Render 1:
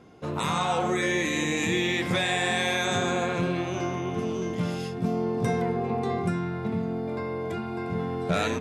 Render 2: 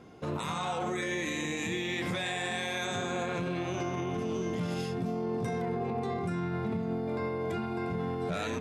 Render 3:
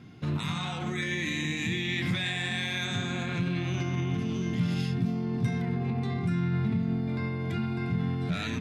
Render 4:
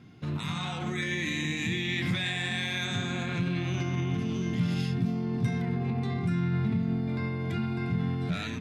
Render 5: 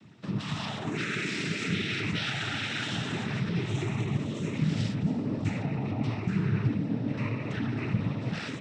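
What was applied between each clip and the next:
peak limiter -25 dBFS, peak gain reduction 9.5 dB
graphic EQ 125/250/500/1000/2000/4000/8000 Hz +10/+4/-10/-4/+4/+5/-4 dB
level rider gain up to 3 dB; trim -3 dB
noise-vocoded speech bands 12

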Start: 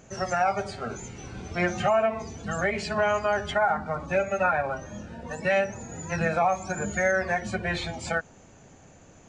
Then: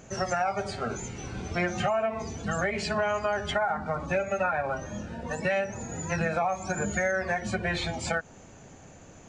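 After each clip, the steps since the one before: compression 3:1, threshold -28 dBFS, peak gain reduction 7.5 dB; trim +2.5 dB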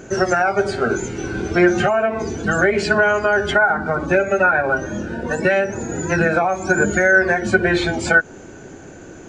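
small resonant body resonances 350/1500 Hz, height 13 dB, ringing for 25 ms; trim +7 dB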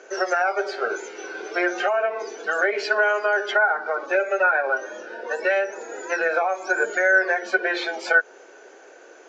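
elliptic band-pass 450–5700 Hz, stop band 50 dB; trim -3.5 dB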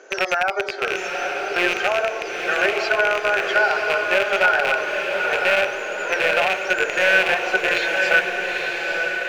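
rattle on loud lows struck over -40 dBFS, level -10 dBFS; echo that smears into a reverb 903 ms, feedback 53%, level -3.5 dB

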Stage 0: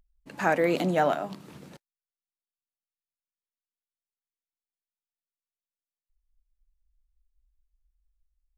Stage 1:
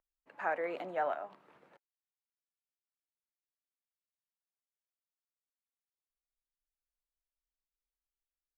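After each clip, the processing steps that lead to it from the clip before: three-band isolator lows -21 dB, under 450 Hz, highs -21 dB, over 2.4 kHz; trim -7.5 dB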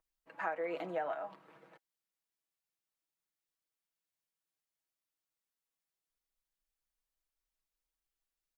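comb 6.2 ms, depth 64%; compression 6:1, threshold -34 dBFS, peak gain reduction 9.5 dB; trim +1 dB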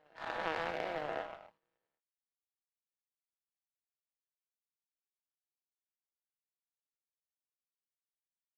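every event in the spectrogram widened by 480 ms; reverse echo 989 ms -14.5 dB; power-law waveshaper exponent 2; trim -1.5 dB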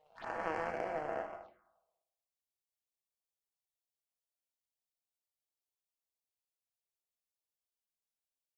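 reverberation RT60 0.95 s, pre-delay 4 ms, DRR 8 dB; touch-sensitive phaser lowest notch 250 Hz, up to 3.7 kHz, full sweep at -40.5 dBFS

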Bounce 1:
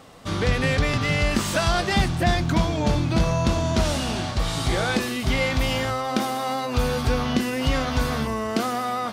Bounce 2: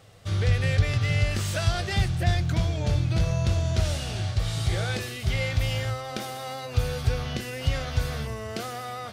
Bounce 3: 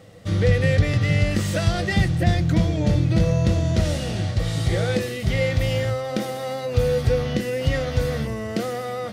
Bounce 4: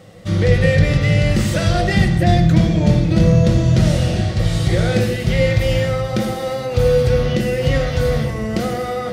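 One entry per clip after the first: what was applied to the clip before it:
fifteen-band graphic EQ 100 Hz +12 dB, 250 Hz -12 dB, 1 kHz -9 dB; trim -5 dB
small resonant body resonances 200/300/490/1900 Hz, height 12 dB, ringing for 45 ms; trim +1 dB
reverberation RT60 1.3 s, pre-delay 5 ms, DRR 3.5 dB; trim +3.5 dB

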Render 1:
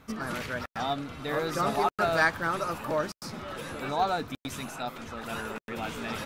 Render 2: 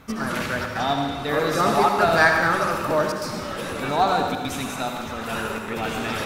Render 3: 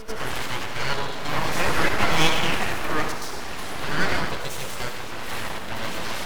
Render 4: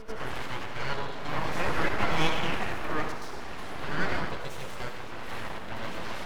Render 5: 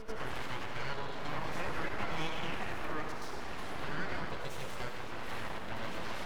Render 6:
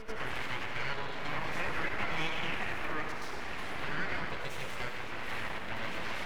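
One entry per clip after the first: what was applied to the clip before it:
reverberation RT60 1.3 s, pre-delay 63 ms, DRR 3 dB; trim +6.5 dB
full-wave rectifier; reverse echo 99 ms -10.5 dB
treble shelf 4.1 kHz -11 dB; trim -5 dB
compression 3:1, threshold -29 dBFS, peak gain reduction 9.5 dB; trim -2 dB
peaking EQ 2.2 kHz +7 dB 1.1 oct

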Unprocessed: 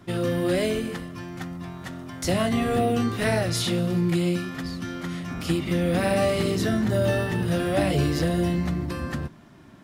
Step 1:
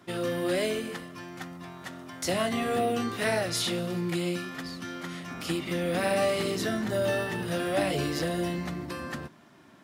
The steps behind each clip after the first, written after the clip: high-pass 360 Hz 6 dB/octave; trim -1.5 dB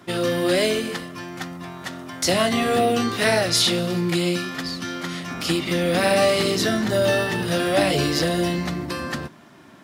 dynamic bell 4.6 kHz, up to +5 dB, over -51 dBFS, Q 1.2; trim +7.5 dB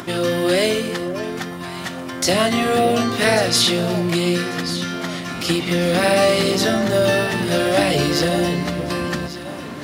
upward compressor, threshold -27 dBFS; echo whose repeats swap between lows and highs 571 ms, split 1.2 kHz, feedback 63%, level -9.5 dB; trim +2.5 dB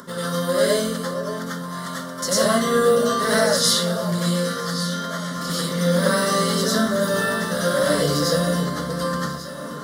static phaser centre 500 Hz, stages 8; reverberation RT60 0.30 s, pre-delay 87 ms, DRR -7 dB; trim -5 dB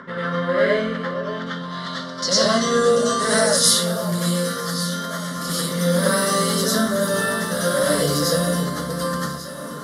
low-pass sweep 2.2 kHz -> 12 kHz, 0.88–3.91 s

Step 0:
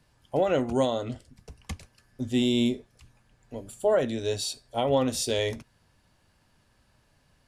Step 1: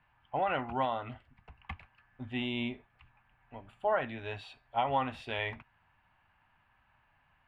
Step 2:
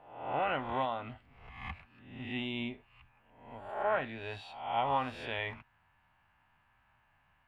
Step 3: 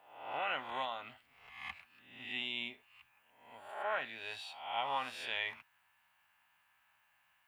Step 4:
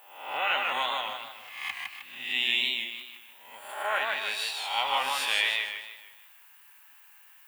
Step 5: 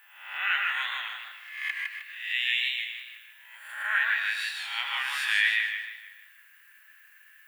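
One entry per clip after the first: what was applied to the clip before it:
FFT filter 100 Hz 0 dB, 510 Hz -7 dB, 810 Hz +11 dB, 2.7 kHz +8 dB, 6 kHz -27 dB; trim -8 dB
reverse spectral sustain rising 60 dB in 0.73 s; trim -3 dB
tilt EQ +4.5 dB/octave; trim -4.5 dB
RIAA curve recording; band-stop 690 Hz, Q 12; modulated delay 155 ms, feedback 41%, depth 110 cents, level -3 dB; trim +7 dB
resonant high-pass 1.7 kHz, resonance Q 5.8; reverberation RT60 0.35 s, pre-delay 111 ms, DRR 8.5 dB; trim -5.5 dB

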